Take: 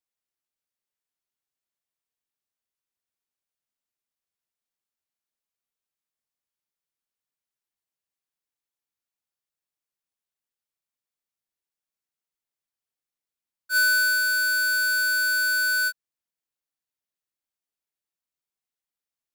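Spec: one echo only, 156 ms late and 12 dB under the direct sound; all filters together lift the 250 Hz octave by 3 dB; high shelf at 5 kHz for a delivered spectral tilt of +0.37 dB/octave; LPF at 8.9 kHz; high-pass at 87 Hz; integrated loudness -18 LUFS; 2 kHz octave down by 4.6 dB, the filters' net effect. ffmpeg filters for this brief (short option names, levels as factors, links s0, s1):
-af "highpass=87,lowpass=8900,equalizer=f=250:t=o:g=4,equalizer=f=2000:t=o:g=-7,highshelf=f=5000:g=-6,aecho=1:1:156:0.251,volume=2"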